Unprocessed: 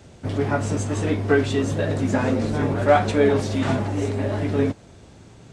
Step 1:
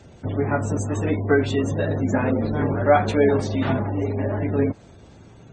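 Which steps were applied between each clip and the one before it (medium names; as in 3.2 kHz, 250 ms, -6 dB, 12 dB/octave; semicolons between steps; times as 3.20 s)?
spectral gate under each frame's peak -30 dB strong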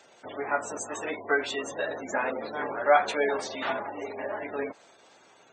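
high-pass 710 Hz 12 dB/octave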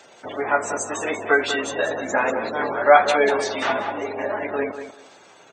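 feedback delay 191 ms, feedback 18%, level -10 dB; trim +7.5 dB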